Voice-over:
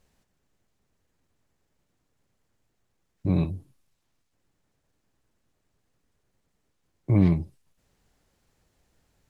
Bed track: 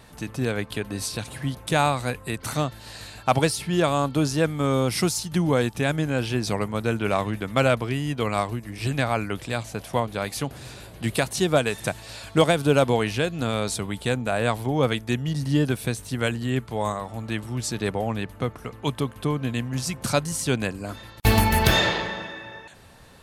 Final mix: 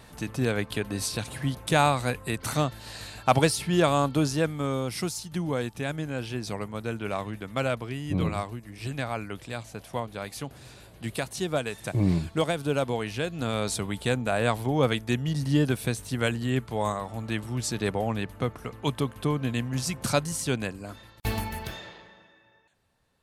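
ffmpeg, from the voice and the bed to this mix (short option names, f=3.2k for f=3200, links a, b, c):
-filter_complex "[0:a]adelay=4850,volume=-4dB[a];[1:a]volume=5.5dB,afade=t=out:st=3.98:d=0.84:silence=0.446684,afade=t=in:st=13.04:d=0.72:silence=0.501187,afade=t=out:st=20.05:d=1.73:silence=0.0944061[b];[a][b]amix=inputs=2:normalize=0"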